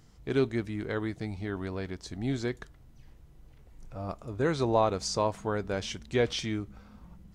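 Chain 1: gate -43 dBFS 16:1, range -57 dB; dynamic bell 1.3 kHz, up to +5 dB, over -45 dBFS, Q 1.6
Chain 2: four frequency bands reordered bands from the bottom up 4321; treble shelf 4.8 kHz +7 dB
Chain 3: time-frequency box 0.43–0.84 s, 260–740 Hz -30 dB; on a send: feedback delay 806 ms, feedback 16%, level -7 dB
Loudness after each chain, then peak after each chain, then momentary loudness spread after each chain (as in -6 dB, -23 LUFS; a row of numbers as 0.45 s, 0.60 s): -31.0 LUFS, -24.5 LUFS, -31.5 LUFS; -11.0 dBFS, -9.0 dBFS, -12.0 dBFS; 13 LU, 17 LU, 13 LU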